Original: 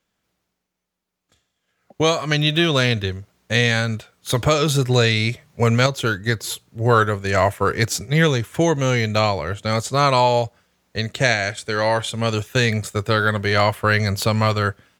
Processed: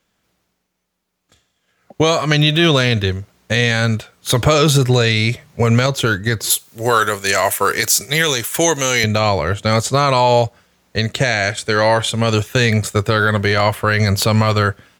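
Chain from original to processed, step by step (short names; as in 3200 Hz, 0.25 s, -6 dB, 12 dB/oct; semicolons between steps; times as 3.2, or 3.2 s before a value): 6.5–9.04 RIAA curve recording; limiter -10.5 dBFS, peak gain reduction 11 dB; gain +7 dB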